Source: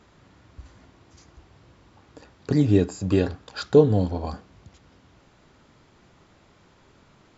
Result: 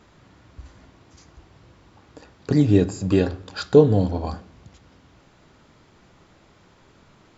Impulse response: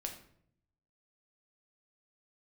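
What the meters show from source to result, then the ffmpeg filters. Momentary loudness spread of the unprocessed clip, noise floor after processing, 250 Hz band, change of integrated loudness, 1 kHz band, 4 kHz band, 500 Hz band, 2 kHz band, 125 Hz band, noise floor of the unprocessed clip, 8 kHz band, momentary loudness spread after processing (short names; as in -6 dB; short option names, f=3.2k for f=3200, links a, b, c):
14 LU, -56 dBFS, +2.5 dB, +2.0 dB, +2.0 dB, +2.0 dB, +2.0 dB, +2.0 dB, +2.0 dB, -58 dBFS, n/a, 17 LU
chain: -filter_complex "[0:a]asplit=2[a][b];[1:a]atrim=start_sample=2205[c];[b][c]afir=irnorm=-1:irlink=0,volume=-8.5dB[d];[a][d]amix=inputs=2:normalize=0"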